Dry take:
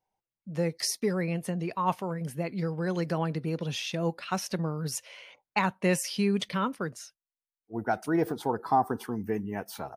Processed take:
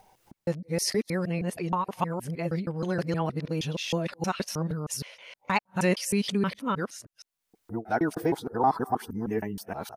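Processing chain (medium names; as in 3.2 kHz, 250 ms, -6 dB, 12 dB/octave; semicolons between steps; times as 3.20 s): time reversed locally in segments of 157 ms; upward compressor, threshold -42 dBFS; trim +1 dB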